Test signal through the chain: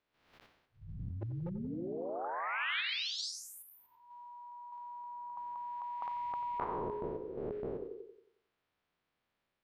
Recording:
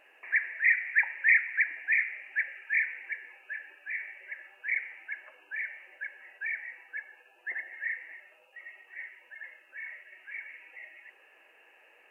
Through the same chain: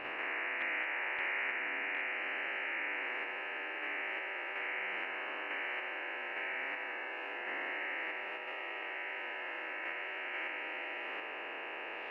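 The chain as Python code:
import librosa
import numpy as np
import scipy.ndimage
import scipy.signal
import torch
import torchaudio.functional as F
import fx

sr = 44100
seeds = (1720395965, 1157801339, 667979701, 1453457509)

p1 = fx.spec_blur(x, sr, span_ms=263.0)
p2 = fx.dynamic_eq(p1, sr, hz=2100.0, q=4.5, threshold_db=-50.0, ratio=4.0, max_db=4)
p3 = fx.level_steps(p2, sr, step_db=15)
p4 = p2 + (p3 * librosa.db_to_amplitude(1.5))
p5 = fx.air_absorb(p4, sr, metres=330.0)
p6 = p5 + fx.echo_bbd(p5, sr, ms=90, stages=1024, feedback_pct=41, wet_db=-13.5, dry=0)
p7 = fx.spectral_comp(p6, sr, ratio=4.0)
y = p7 * librosa.db_to_amplitude(-8.5)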